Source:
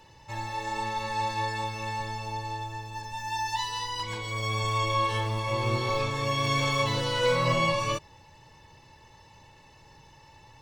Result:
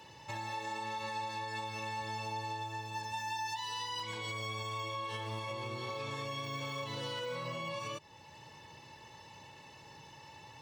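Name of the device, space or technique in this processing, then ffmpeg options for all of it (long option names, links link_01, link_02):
broadcast voice chain: -af "highpass=120,deesser=0.9,acompressor=threshold=-30dB:ratio=6,equalizer=frequency=3100:width_type=o:width=0.54:gain=3,alimiter=level_in=7.5dB:limit=-24dB:level=0:latency=1:release=418,volume=-7.5dB,volume=1dB"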